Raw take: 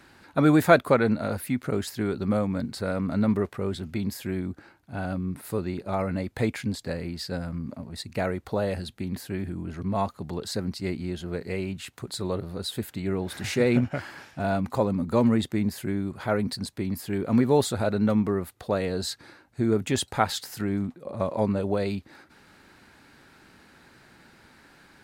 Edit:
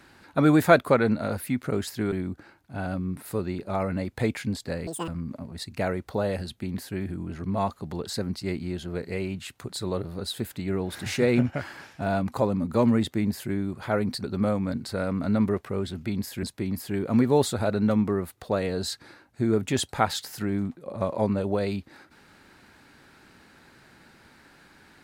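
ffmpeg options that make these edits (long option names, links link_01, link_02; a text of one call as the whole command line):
ffmpeg -i in.wav -filter_complex "[0:a]asplit=6[link_01][link_02][link_03][link_04][link_05][link_06];[link_01]atrim=end=2.122[link_07];[link_02]atrim=start=4.308:end=7.064[link_08];[link_03]atrim=start=7.06:end=7.46,asetpts=PTS-STARTPTS,asetrate=84231,aresample=44100[link_09];[link_04]atrim=start=7.456:end=16.622[link_10];[link_05]atrim=start=2.118:end=4.312[link_11];[link_06]atrim=start=16.618[link_12];[link_07][link_08]acrossfade=duration=0.004:curve1=hsin:curve2=hsin[link_13];[link_13][link_09]acrossfade=duration=0.004:curve1=hsin:curve2=hsin[link_14];[link_14][link_10]acrossfade=duration=0.004:curve1=hsin:curve2=hsin[link_15];[link_15][link_11]acrossfade=duration=0.004:curve1=hsin:curve2=hsin[link_16];[link_16][link_12]acrossfade=duration=0.004:curve1=hsin:curve2=hsin" out.wav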